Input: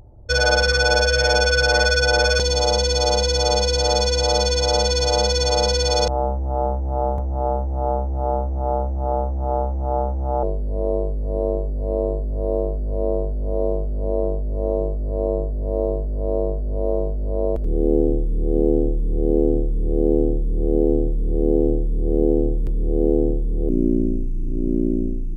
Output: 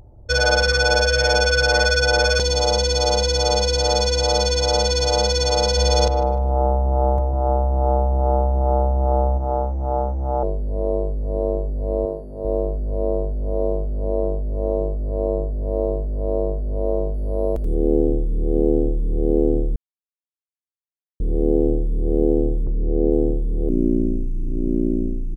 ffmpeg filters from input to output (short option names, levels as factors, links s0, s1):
-filter_complex "[0:a]asplit=3[s0][s1][s2];[s0]afade=t=out:st=5.76:d=0.02[s3];[s1]asplit=2[s4][s5];[s5]adelay=151,lowpass=f=1400:p=1,volume=0.422,asplit=2[s6][s7];[s7]adelay=151,lowpass=f=1400:p=1,volume=0.53,asplit=2[s8][s9];[s9]adelay=151,lowpass=f=1400:p=1,volume=0.53,asplit=2[s10][s11];[s11]adelay=151,lowpass=f=1400:p=1,volume=0.53,asplit=2[s12][s13];[s13]adelay=151,lowpass=f=1400:p=1,volume=0.53,asplit=2[s14][s15];[s15]adelay=151,lowpass=f=1400:p=1,volume=0.53[s16];[s4][s6][s8][s10][s12][s14][s16]amix=inputs=7:normalize=0,afade=t=in:st=5.76:d=0.02,afade=t=out:st=9.37:d=0.02[s17];[s2]afade=t=in:st=9.37:d=0.02[s18];[s3][s17][s18]amix=inputs=3:normalize=0,asettb=1/sr,asplit=3[s19][s20][s21];[s19]atrim=end=12.054[s22];[s20]atrim=start=12.05:end=12.45,asetpts=PTS-STARTPTS,afade=t=in:d=0.004:c=qsin,afade=t=out:st=0.396:d=0.004:c=qsin,highpass=f=230:p=1[s23];[s21]atrim=start=12.446[s24];[s22][s23]acrossfade=d=0.004:c1=hsin:c2=qsin[s25];[s25][s24]acrossfade=d=0.004:c1=qsin:c2=hsin,asettb=1/sr,asplit=3[s26][s27][s28];[s26]atrim=end=17.144[s29];[s27]atrim=start=17.14:end=17.75,asetpts=PTS-STARTPTS,afade=t=in:d=0.004:c=qsin,afade=t=out:st=0.606:d=0.004:c=qsin,highshelf=f=5900:g=10[s30];[s28]atrim=start=17.746[s31];[s29][s30]acrossfade=d=0.004:c1=hsin:c2=qsin[s32];[s32][s31]acrossfade=d=0.004:c1=qsin:c2=hsin,asplit=3[s33][s34][s35];[s33]afade=t=out:st=22.63:d=0.02[s36];[s34]lowpass=f=1000:w=0.5412,lowpass=f=1000:w=1.3066,afade=t=in:st=22.63:d=0.02,afade=t=out:st=23.1:d=0.02[s37];[s35]afade=t=in:st=23.1:d=0.02[s38];[s36][s37][s38]amix=inputs=3:normalize=0,asplit=3[s39][s40][s41];[s39]atrim=end=19.76,asetpts=PTS-STARTPTS,afade=t=out:st=19.756:d=0.004:c=hsin[s42];[s40]atrim=start=19.76:end=21.2,asetpts=PTS-STARTPTS,volume=0[s43];[s41]atrim=start=21.2,asetpts=PTS-STARTPTS,afade=t=in:d=0.004:c=hsin[s44];[s42][s43][s44]concat=n=3:v=0:a=1"